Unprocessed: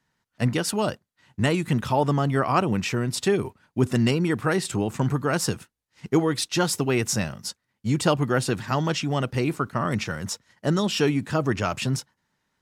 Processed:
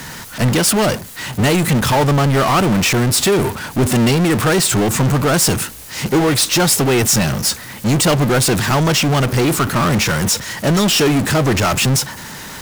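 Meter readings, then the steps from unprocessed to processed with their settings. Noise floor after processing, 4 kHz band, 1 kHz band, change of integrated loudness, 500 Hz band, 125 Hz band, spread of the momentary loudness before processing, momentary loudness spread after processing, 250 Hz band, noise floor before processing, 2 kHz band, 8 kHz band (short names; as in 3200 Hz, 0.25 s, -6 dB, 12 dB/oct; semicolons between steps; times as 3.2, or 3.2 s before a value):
-33 dBFS, +13.0 dB, +9.0 dB, +10.0 dB, +8.0 dB, +9.5 dB, 8 LU, 6 LU, +8.5 dB, -78 dBFS, +10.5 dB, +15.0 dB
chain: high shelf 7200 Hz +9.5 dB; power-law curve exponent 0.35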